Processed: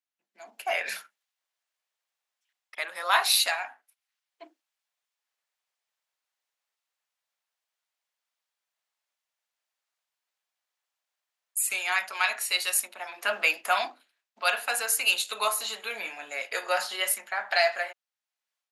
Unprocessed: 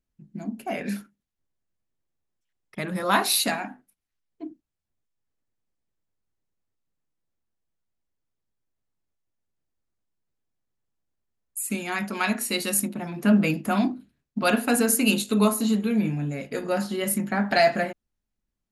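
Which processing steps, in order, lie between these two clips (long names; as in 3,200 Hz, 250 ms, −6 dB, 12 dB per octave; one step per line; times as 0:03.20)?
high-pass filter 640 Hz 24 dB per octave
parametric band 3,000 Hz +6 dB 2.4 octaves
automatic gain control gain up to 11 dB
level −8 dB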